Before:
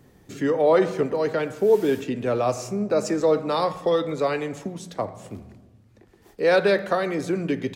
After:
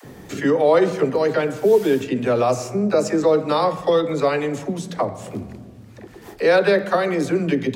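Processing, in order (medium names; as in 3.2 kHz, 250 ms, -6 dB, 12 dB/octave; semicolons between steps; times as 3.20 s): phase dispersion lows, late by 43 ms, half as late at 420 Hz; three bands compressed up and down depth 40%; trim +4 dB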